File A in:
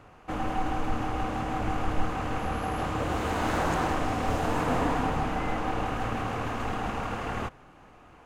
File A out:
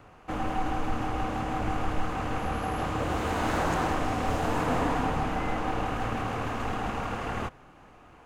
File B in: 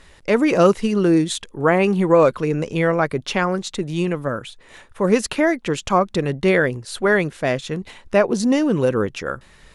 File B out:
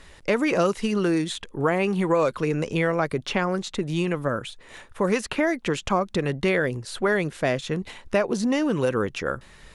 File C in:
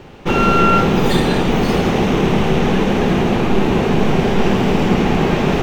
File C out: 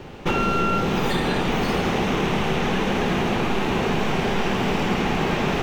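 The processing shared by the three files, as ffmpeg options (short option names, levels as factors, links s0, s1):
-filter_complex "[0:a]acrossover=split=770|3100[s0][s1][s2];[s0]acompressor=threshold=0.0794:ratio=4[s3];[s1]acompressor=threshold=0.0501:ratio=4[s4];[s2]acompressor=threshold=0.0141:ratio=4[s5];[s3][s4][s5]amix=inputs=3:normalize=0"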